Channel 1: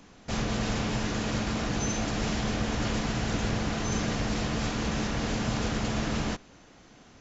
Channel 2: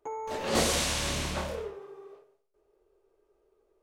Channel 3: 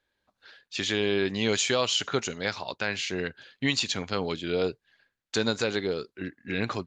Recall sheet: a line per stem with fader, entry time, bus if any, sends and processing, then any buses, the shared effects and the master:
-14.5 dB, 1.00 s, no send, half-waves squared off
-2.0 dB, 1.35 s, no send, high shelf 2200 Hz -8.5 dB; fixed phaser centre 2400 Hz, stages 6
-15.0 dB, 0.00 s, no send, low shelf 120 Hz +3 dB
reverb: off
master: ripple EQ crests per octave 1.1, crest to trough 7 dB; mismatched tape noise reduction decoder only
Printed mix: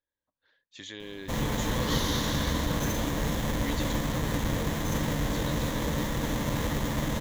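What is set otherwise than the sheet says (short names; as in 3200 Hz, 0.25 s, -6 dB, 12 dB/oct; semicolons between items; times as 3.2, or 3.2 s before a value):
stem 1 -14.5 dB -> -5.0 dB; stem 2: missing high shelf 2200 Hz -8.5 dB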